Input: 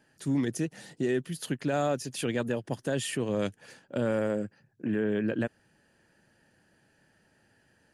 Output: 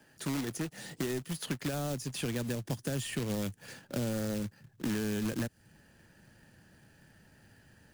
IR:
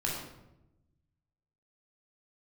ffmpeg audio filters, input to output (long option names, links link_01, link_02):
-filter_complex "[0:a]acrusher=bits=2:mode=log:mix=0:aa=0.000001,acrossover=split=85|330|4300[link_01][link_02][link_03][link_04];[link_01]acompressor=threshold=-59dB:ratio=4[link_05];[link_02]acompressor=threshold=-42dB:ratio=4[link_06];[link_03]acompressor=threshold=-43dB:ratio=4[link_07];[link_04]acompressor=threshold=-46dB:ratio=4[link_08];[link_05][link_06][link_07][link_08]amix=inputs=4:normalize=0,asubboost=boost=2:cutoff=240,volume=3.5dB"